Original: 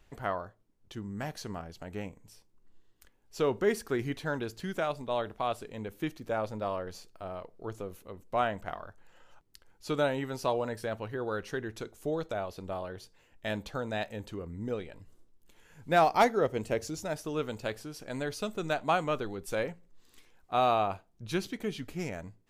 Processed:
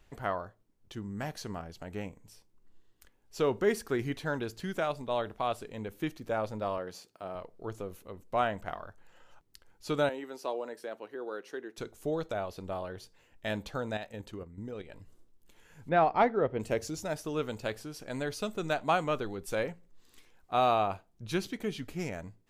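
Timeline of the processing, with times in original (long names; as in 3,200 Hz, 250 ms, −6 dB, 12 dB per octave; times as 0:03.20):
0:06.78–0:07.35: high-pass filter 140 Hz
0:10.09–0:11.78: four-pole ladder high-pass 250 Hz, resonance 30%
0:13.97–0:14.90: output level in coarse steps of 10 dB
0:15.89–0:16.60: high-frequency loss of the air 370 metres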